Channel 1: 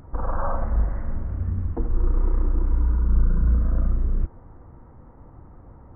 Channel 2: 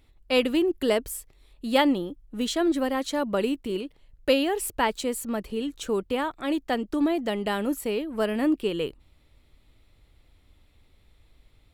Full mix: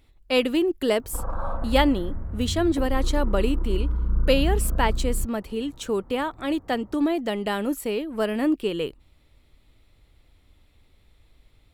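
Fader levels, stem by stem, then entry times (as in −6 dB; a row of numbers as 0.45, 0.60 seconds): −4.0, +1.0 decibels; 1.00, 0.00 seconds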